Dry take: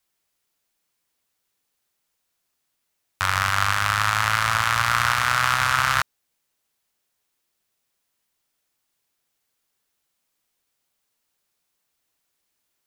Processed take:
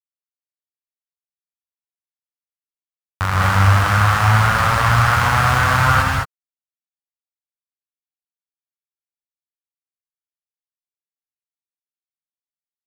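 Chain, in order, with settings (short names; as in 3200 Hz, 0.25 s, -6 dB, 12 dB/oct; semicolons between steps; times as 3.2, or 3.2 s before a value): tilt shelf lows +9.5 dB; in parallel at +2.5 dB: limiter -17.5 dBFS, peak gain reduction 11 dB; on the sum: sample gate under -26.5 dBFS; non-linear reverb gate 0.24 s rising, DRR -2.5 dB; gain -1 dB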